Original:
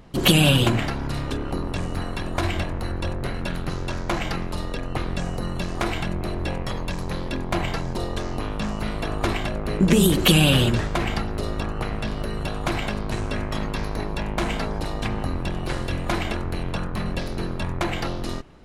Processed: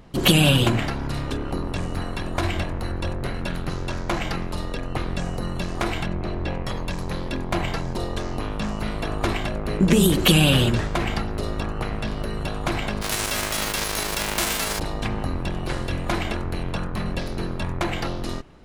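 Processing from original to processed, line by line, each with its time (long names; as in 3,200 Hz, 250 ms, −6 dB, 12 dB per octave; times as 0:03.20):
0:06.06–0:06.66: high-frequency loss of the air 90 metres
0:13.01–0:14.78: spectral envelope flattened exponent 0.3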